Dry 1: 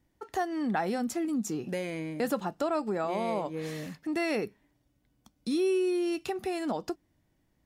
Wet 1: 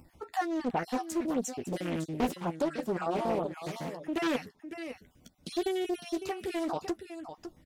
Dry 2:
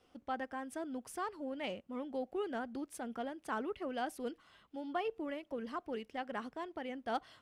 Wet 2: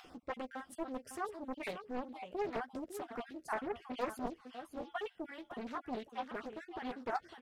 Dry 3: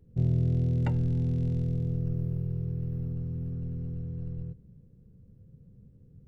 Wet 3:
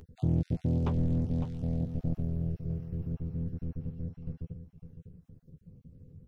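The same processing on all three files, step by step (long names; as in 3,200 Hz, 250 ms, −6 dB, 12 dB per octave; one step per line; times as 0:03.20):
time-frequency cells dropped at random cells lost 33%
upward compression, threshold −47 dBFS
double-tracking delay 12 ms −7 dB
single-tap delay 555 ms −10.5 dB
highs frequency-modulated by the lows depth 0.81 ms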